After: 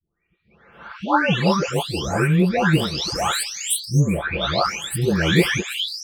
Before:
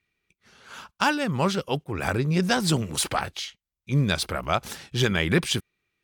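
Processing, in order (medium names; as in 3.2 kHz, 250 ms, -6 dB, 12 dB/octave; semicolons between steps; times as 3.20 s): delay that grows with frequency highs late, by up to 727 ms; trim +7 dB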